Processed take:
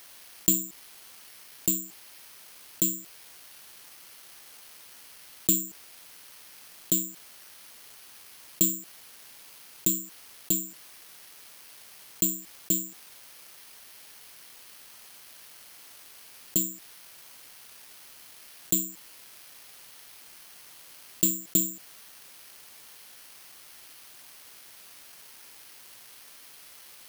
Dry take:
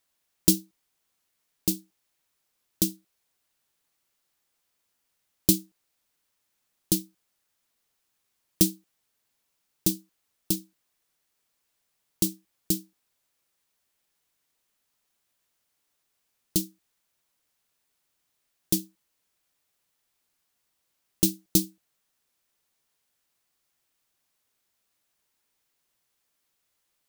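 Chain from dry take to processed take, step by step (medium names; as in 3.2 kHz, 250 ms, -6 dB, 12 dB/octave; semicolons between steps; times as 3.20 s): tilt EQ +1.5 dB/octave; careless resampling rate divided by 6×, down filtered, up zero stuff; level flattener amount 50%; trim -5.5 dB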